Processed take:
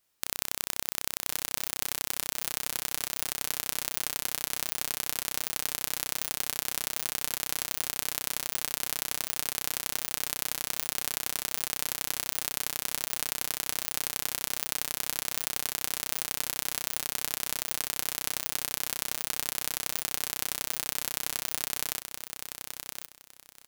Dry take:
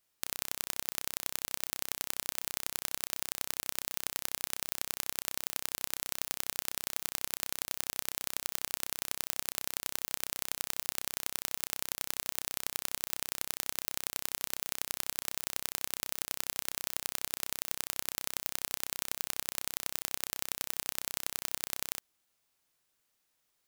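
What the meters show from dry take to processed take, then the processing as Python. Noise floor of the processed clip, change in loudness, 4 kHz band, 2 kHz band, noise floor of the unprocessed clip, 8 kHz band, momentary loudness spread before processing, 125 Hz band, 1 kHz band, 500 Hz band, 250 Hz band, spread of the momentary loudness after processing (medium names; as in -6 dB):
-55 dBFS, +4.0 dB, +4.5 dB, +4.5 dB, -78 dBFS, +4.5 dB, 1 LU, +5.0 dB, +4.5 dB, +4.0 dB, +4.5 dB, 1 LU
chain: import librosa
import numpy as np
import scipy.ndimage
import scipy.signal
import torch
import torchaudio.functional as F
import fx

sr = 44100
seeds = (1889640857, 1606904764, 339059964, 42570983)

p1 = fx.level_steps(x, sr, step_db=21)
p2 = x + (p1 * librosa.db_to_amplitude(-1.5))
y = fx.echo_feedback(p2, sr, ms=1066, feedback_pct=21, wet_db=-7.0)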